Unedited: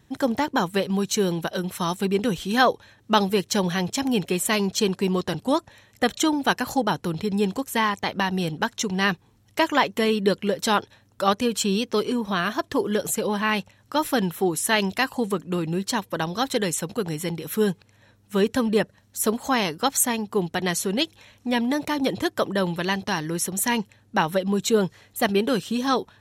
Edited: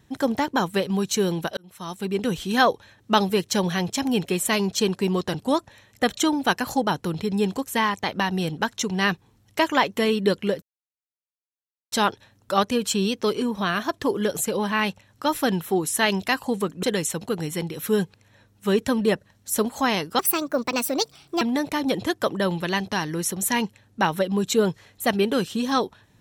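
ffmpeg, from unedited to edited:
-filter_complex "[0:a]asplit=6[s0][s1][s2][s3][s4][s5];[s0]atrim=end=1.57,asetpts=PTS-STARTPTS,afade=t=out:st=1.566:d=0.004:c=hsin[s6];[s1]atrim=start=1.57:end=10.62,asetpts=PTS-STARTPTS,afade=t=in:d=0.79,afade=t=out:st=9.046:d=0.004:c=hsin,apad=pad_dur=1.3[s7];[s2]atrim=start=10.62:end=15.532,asetpts=PTS-STARTPTS,afade=t=in:d=0.004:c=hsin[s8];[s3]atrim=start=16.508:end=19.874[s9];[s4]atrim=start=19.87:end=21.57,asetpts=PTS-STARTPTS,asetrate=61299,aresample=44100,atrim=end_sample=53935,asetpts=PTS-STARTPTS[s10];[s5]atrim=start=21.566[s11];[s6][s7][s8]concat=n=3:v=0:a=1[s12];[s12][s9]acrossfade=d=0.004:c1=hsin:c2=hsin[s13];[s13][s10]acrossfade=d=0.004:c1=hsin:c2=hsin[s14];[s14][s11]acrossfade=d=0.004:c1=hsin:c2=hsin"

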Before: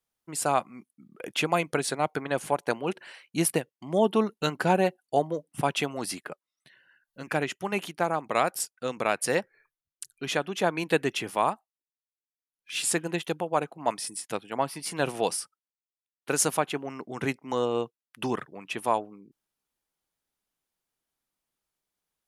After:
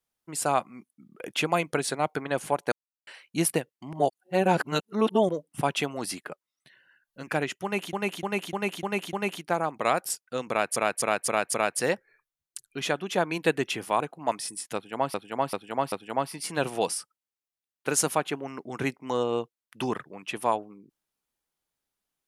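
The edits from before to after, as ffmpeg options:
-filter_complex "[0:a]asplit=18[s0][s1][s2][s3][s4][s5][s6][s7][s8][s9][s10][s11][s12][s13][s14][s15][s16][s17];[s0]atrim=end=2.72,asetpts=PTS-STARTPTS,afade=t=out:st=2.716:d=0.004:c=hsin[s18];[s1]atrim=start=2.72:end=3.07,asetpts=PTS-STARTPTS,volume=0[s19];[s2]atrim=start=3.07:end=3.932,asetpts=PTS-STARTPTS,afade=t=in:d=0.004:c=hsin[s20];[s3]atrim=start=3.928:end=5.292,asetpts=PTS-STARTPTS,areverse[s21];[s4]atrim=start=5.288:end=7.932[s22];[s5]atrim=start=7.628:end=7.932[s23];[s6]atrim=start=7.628:end=7.932[s24];[s7]atrim=start=7.628:end=7.932[s25];[s8]atrim=start=7.628:end=7.932[s26];[s9]atrim=start=7.628:end=9.262[s27];[s10]atrim=start=8.998:end=9.262[s28];[s11]atrim=start=8.998:end=9.262[s29];[s12]atrim=start=8.998:end=9.262[s30];[s13]atrim=start=8.998:end=11.462[s31];[s14]atrim=start=13.588:end=14.732[s32];[s15]atrim=start=14.338:end=14.732[s33];[s16]atrim=start=14.338:end=14.732[s34];[s17]atrim=start=14.338[s35];[s18][s19][s20]concat=n=3:v=0:a=1[s36];[s36][s21]acrossfade=d=0.004:c1=hsin:c2=hsin[s37];[s37][s22]acrossfade=d=0.004:c1=hsin:c2=hsin[s38];[s38][s23]acrossfade=d=0.004:c1=hsin:c2=hsin[s39];[s39][s24]acrossfade=d=0.004:c1=hsin:c2=hsin[s40];[s40][s25]acrossfade=d=0.004:c1=hsin:c2=hsin[s41];[s41][s26]acrossfade=d=0.004:c1=hsin:c2=hsin[s42];[s42][s27]acrossfade=d=0.004:c1=hsin:c2=hsin[s43];[s43][s28]acrossfade=d=0.004:c1=hsin:c2=hsin[s44];[s44][s29]acrossfade=d=0.004:c1=hsin:c2=hsin[s45];[s45][s30]acrossfade=d=0.004:c1=hsin:c2=hsin[s46];[s46][s31]acrossfade=d=0.004:c1=hsin:c2=hsin[s47];[s47][s32]acrossfade=d=0.004:c1=hsin:c2=hsin[s48];[s48][s33]acrossfade=d=0.004:c1=hsin:c2=hsin[s49];[s49][s34]acrossfade=d=0.004:c1=hsin:c2=hsin[s50];[s50][s35]acrossfade=d=0.004:c1=hsin:c2=hsin"

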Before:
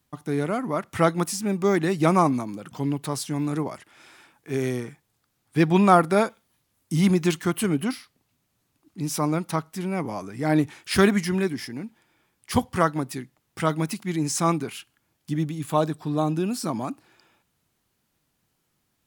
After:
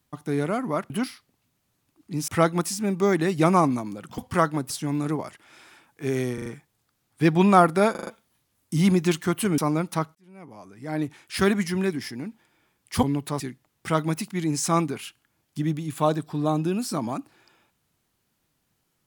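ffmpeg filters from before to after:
-filter_complex "[0:a]asplit=16[s0][s1][s2][s3][s4][s5][s6][s7][s8][s9][s10][s11][s12][s13][s14][s15];[s0]atrim=end=0.902[s16];[s1]atrim=start=7.768:end=9.152[s17];[s2]atrim=start=0.898:end=2.802[s18];[s3]atrim=start=12.598:end=13.122[s19];[s4]atrim=start=3.168:end=4.852[s20];[s5]atrim=start=4.808:end=4.852[s21];[s6]atrim=start=4.808:end=4.852[s22];[s7]atrim=start=4.808:end=6.302[s23];[s8]atrim=start=6.258:end=6.302[s24];[s9]atrim=start=6.258:end=6.302[s25];[s10]atrim=start=6.258:end=6.302[s26];[s11]atrim=start=6.258:end=7.772[s27];[s12]atrim=start=9.148:end=9.72,asetpts=PTS-STARTPTS,afade=t=out:st=0.568:d=0.004:c=hsin[s28];[s13]atrim=start=9.72:end=12.602,asetpts=PTS-STARTPTS,afade=t=in:d=1.87[s29];[s14]atrim=start=2.798:end=3.172[s30];[s15]atrim=start=13.118[s31];[s16][s17]acrossfade=d=0.004:c1=hsin:c2=hsin[s32];[s32][s18]acrossfade=d=0.004:c1=hsin:c2=hsin[s33];[s33][s19]acrossfade=d=0.004:c1=hsin:c2=hsin[s34];[s34][s20]acrossfade=d=0.004:c1=hsin:c2=hsin[s35];[s35][s21]acrossfade=d=0.004:c1=hsin:c2=hsin[s36];[s36][s22]acrossfade=d=0.004:c1=hsin:c2=hsin[s37];[s37][s23]acrossfade=d=0.004:c1=hsin:c2=hsin[s38];[s38][s24]acrossfade=d=0.004:c1=hsin:c2=hsin[s39];[s39][s25]acrossfade=d=0.004:c1=hsin:c2=hsin[s40];[s40][s26]acrossfade=d=0.004:c1=hsin:c2=hsin[s41];[s41][s27]acrossfade=d=0.004:c1=hsin:c2=hsin[s42];[s28][s29]concat=n=2:v=0:a=1[s43];[s42][s43]acrossfade=d=0.004:c1=hsin:c2=hsin[s44];[s44][s30]acrossfade=d=0.004:c1=hsin:c2=hsin[s45];[s45][s31]acrossfade=d=0.004:c1=hsin:c2=hsin"

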